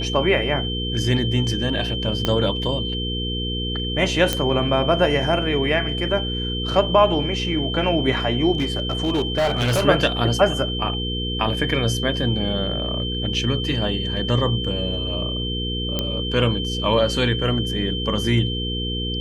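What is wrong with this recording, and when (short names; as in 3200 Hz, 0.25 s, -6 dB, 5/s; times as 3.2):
hum 60 Hz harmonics 8 -27 dBFS
tone 3100 Hz -27 dBFS
2.25 pop -7 dBFS
4.33 pop -4 dBFS
8.55–9.85 clipped -16 dBFS
15.99 pop -8 dBFS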